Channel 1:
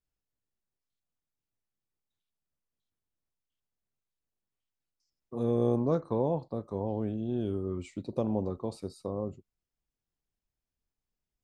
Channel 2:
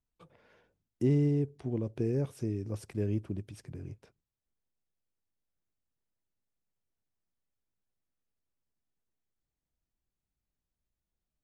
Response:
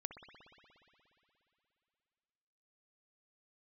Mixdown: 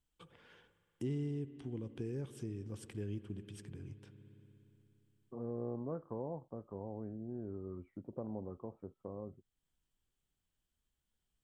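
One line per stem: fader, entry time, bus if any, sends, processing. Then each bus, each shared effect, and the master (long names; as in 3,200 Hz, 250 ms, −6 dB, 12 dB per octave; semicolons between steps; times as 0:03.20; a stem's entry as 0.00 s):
−2.5 dB, 0.00 s, no send, Butterworth low-pass 1,700 Hz 36 dB per octave
−2.5 dB, 0.00 s, send −3 dB, thirty-one-band graphic EQ 630 Hz −9 dB, 1,600 Hz +4 dB, 3,150 Hz +11 dB, 8,000 Hz +7 dB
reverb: on, RT60 3.0 s, pre-delay 59 ms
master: downward compressor 1.5 to 1, threshold −56 dBFS, peak gain reduction 12 dB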